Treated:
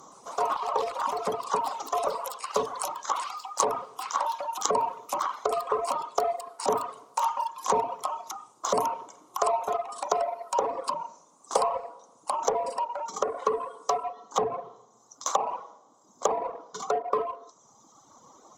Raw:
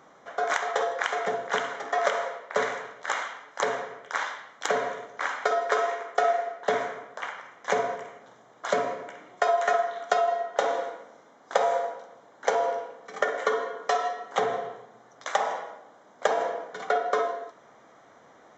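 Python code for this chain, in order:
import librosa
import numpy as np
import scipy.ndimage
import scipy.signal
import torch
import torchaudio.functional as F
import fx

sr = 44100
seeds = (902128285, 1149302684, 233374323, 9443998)

p1 = fx.env_lowpass_down(x, sr, base_hz=940.0, full_db=-22.0)
p2 = fx.echo_pitch(p1, sr, ms=120, semitones=5, count=3, db_per_echo=-6.0)
p3 = fx.curve_eq(p2, sr, hz=(380.0, 680.0, 1100.0, 1700.0, 6300.0), db=(0, -4, 7, -19, 13))
p4 = np.clip(p3, -10.0 ** (-31.5 / 20.0), 10.0 ** (-31.5 / 20.0))
p5 = p3 + (p4 * 10.0 ** (-6.0 / 20.0))
y = fx.dereverb_blind(p5, sr, rt60_s=1.7)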